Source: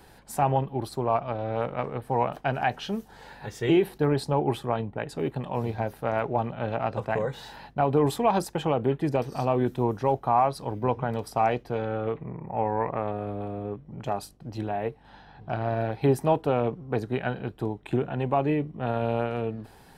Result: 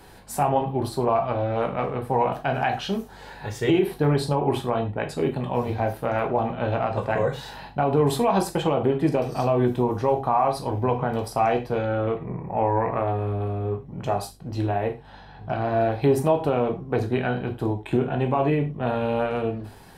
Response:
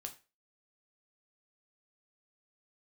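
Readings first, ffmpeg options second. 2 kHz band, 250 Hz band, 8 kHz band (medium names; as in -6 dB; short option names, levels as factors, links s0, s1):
+3.5 dB, +3.5 dB, +4.5 dB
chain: -filter_complex "[1:a]atrim=start_sample=2205,afade=t=out:st=0.16:d=0.01,atrim=end_sample=7497,asetrate=40131,aresample=44100[s0];[0:a][s0]afir=irnorm=-1:irlink=0,alimiter=limit=0.112:level=0:latency=1:release=108,volume=2.51"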